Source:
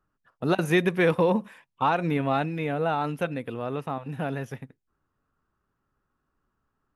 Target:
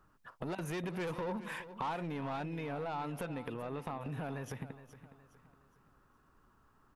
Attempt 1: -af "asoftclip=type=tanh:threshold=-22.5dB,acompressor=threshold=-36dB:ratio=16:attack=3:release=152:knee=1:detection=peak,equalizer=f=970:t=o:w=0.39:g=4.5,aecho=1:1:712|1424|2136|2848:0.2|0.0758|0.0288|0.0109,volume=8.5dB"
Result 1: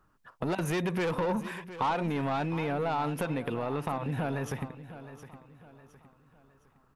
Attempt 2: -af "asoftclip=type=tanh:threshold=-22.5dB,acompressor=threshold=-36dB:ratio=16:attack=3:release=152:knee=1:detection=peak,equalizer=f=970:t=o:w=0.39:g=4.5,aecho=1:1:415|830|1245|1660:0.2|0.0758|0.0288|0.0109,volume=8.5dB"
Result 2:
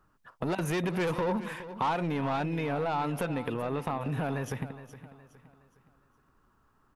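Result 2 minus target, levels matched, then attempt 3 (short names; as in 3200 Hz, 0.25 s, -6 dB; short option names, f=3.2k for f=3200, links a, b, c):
compressor: peak gain reduction -8.5 dB
-af "asoftclip=type=tanh:threshold=-22.5dB,acompressor=threshold=-45dB:ratio=16:attack=3:release=152:knee=1:detection=peak,equalizer=f=970:t=o:w=0.39:g=4.5,aecho=1:1:415|830|1245|1660:0.2|0.0758|0.0288|0.0109,volume=8.5dB"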